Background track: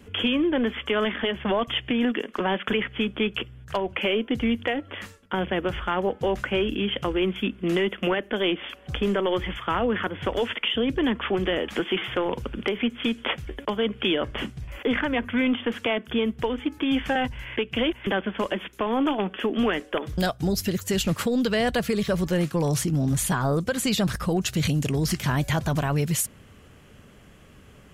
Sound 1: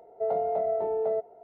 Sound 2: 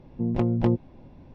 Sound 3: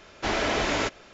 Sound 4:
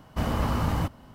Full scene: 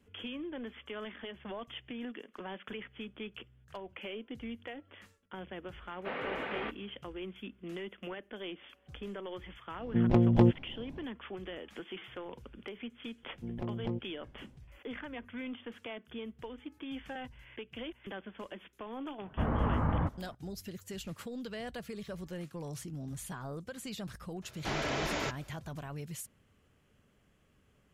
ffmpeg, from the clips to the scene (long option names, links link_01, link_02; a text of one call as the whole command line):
ffmpeg -i bed.wav -i cue0.wav -i cue1.wav -i cue2.wav -i cue3.wav -filter_complex "[3:a]asplit=2[link_01][link_02];[2:a]asplit=2[link_03][link_04];[0:a]volume=-18dB[link_05];[link_01]highpass=frequency=430:width_type=q:width=0.5412,highpass=frequency=430:width_type=q:width=1.307,lowpass=frequency=3100:width_type=q:width=0.5176,lowpass=frequency=3100:width_type=q:width=0.7071,lowpass=frequency=3100:width_type=q:width=1.932,afreqshift=-160[link_06];[4:a]lowpass=frequency=1900:width=0.5412,lowpass=frequency=1900:width=1.3066[link_07];[link_06]atrim=end=1.13,asetpts=PTS-STARTPTS,volume=-10.5dB,afade=type=in:duration=0.004:curve=hsin,afade=type=out:start_time=1.126:duration=0.004:curve=hsin,adelay=5820[link_08];[link_03]atrim=end=1.34,asetpts=PTS-STARTPTS,volume=-0.5dB,afade=type=in:duration=0.1,afade=type=out:start_time=1.24:duration=0.1,adelay=9750[link_09];[link_04]atrim=end=1.34,asetpts=PTS-STARTPTS,volume=-14dB,afade=type=in:duration=0.004:curve=hsin,afade=type=out:start_time=1.336:duration=0.004:curve=hsin,adelay=13230[link_10];[link_07]atrim=end=1.14,asetpts=PTS-STARTPTS,volume=-4dB,afade=type=in:duration=0.004:curve=hsin,afade=type=out:start_time=1.136:duration=0.004:curve=hsin,adelay=19210[link_11];[link_02]atrim=end=1.13,asetpts=PTS-STARTPTS,volume=-8.5dB,afade=type=in:duration=0.004:curve=hsin,afade=type=out:start_time=1.126:duration=0.004:curve=hsin,adelay=24420[link_12];[link_05][link_08][link_09][link_10][link_11][link_12]amix=inputs=6:normalize=0" out.wav